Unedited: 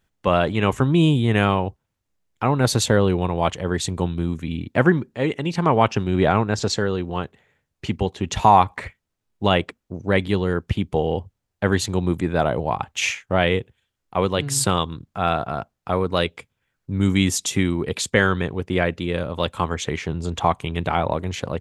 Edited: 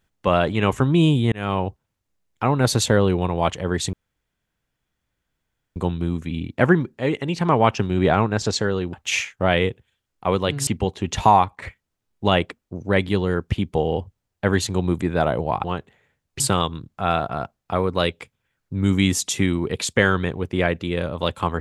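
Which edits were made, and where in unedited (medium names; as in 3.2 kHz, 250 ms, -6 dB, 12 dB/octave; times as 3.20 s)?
1.32–1.62 s: fade in linear
3.93 s: insert room tone 1.83 s
7.10–7.86 s: swap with 12.83–14.57 s
8.46–8.81 s: fade out, to -9.5 dB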